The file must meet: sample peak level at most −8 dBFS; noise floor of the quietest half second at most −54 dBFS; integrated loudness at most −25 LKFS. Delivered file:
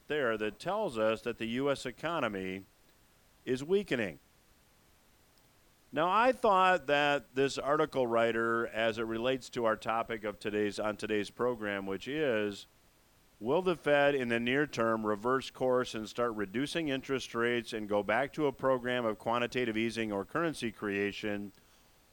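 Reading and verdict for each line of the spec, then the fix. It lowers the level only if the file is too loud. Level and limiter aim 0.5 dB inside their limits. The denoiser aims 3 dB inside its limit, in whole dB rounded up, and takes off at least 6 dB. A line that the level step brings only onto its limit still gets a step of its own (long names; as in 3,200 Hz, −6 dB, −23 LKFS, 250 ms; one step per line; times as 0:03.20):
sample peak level −14.5 dBFS: in spec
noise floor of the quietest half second −65 dBFS: in spec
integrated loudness −32.0 LKFS: in spec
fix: no processing needed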